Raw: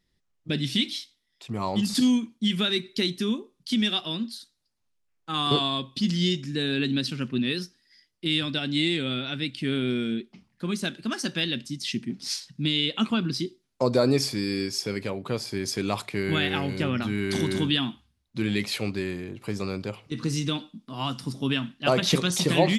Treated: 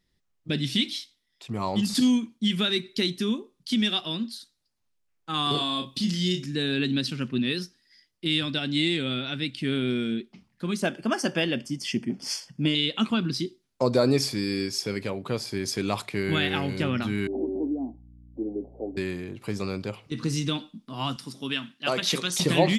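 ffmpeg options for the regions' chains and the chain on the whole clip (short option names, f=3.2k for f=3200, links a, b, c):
-filter_complex "[0:a]asettb=1/sr,asplit=3[a][b][c];[a]atrim=end=5.514[d];[b]atrim=start=5.51:end=6.46,asetpts=PTS-STARTPTS,afade=t=in:d=0.004:c=qsin,afade=t=out:st=0.946:d=0.004:c=qsin,highshelf=f=7.3k:g=10,acompressor=threshold=-26dB:ratio=2:attack=3.2:release=140:knee=1:detection=peak,asplit=2[e][f];[f]adelay=33,volume=-6dB[g];[e][g]amix=inputs=2:normalize=0,atrim=end_sample=41895[h];[c]atrim=start=6.456[i];[d][h]acrossfade=d=0.004:c1=hsin:c2=qsin[j];[j][i]acrossfade=d=0.004:c1=qsin:c2=hsin,asettb=1/sr,asplit=3[k][l][m];[k]atrim=end=10.824[n];[l]atrim=start=10.82:end=12.75,asetpts=PTS-STARTPTS,afade=t=in:d=0.004:c=qsin,afade=t=out:st=1.926:d=0.004:c=qsin,asuperstop=centerf=3900:order=4:qfactor=4,equalizer=f=660:t=o:w=1.6:g=11[o];[m]atrim=start=12.746[p];[n][o]acrossfade=d=0.004:c1=hsin:c2=qsin[q];[q][p]acrossfade=d=0.004:c1=qsin:c2=hsin,asettb=1/sr,asplit=3[r][s][t];[r]atrim=end=17.274[u];[s]atrim=start=17.27:end=18.97,asetpts=PTS-STARTPTS,afade=t=in:d=0.004:c=qsin,afade=t=out:st=1.696:d=0.004:c=qsin,asuperpass=centerf=440:order=12:qfactor=0.83,aeval=exprs='val(0)+0.00355*(sin(2*PI*60*n/s)+sin(2*PI*2*60*n/s)/2+sin(2*PI*3*60*n/s)/3+sin(2*PI*4*60*n/s)/4+sin(2*PI*5*60*n/s)/5)':c=same[v];[t]atrim=start=18.966[w];[u][v]acrossfade=d=0.004:c1=hsin:c2=qsin[x];[x][w]acrossfade=d=0.004:c1=qsin:c2=hsin,asettb=1/sr,asplit=3[y][z][aa];[y]atrim=end=21.164[ab];[z]atrim=start=21.16:end=22.4,asetpts=PTS-STARTPTS,afade=t=in:d=0.004:c=qsin,afade=t=out:st=1.236:d=0.004:c=qsin,highpass=f=440:p=1,equalizer=f=720:t=o:w=1.5:g=-4[ac];[aa]atrim=start=22.396[ad];[ab][ac]acrossfade=d=0.004:c1=hsin:c2=qsin[ae];[ae][ad]acrossfade=d=0.004:c1=qsin:c2=hsin"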